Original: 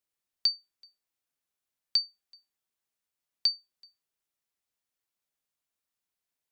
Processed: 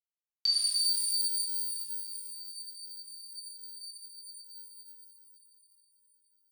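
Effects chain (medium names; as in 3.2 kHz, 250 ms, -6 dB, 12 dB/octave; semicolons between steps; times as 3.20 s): expander -58 dBFS; spectral freeze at 0.87 s, 3.12 s; pitch-shifted reverb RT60 3.9 s, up +12 st, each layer -2 dB, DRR -10 dB; trim -5.5 dB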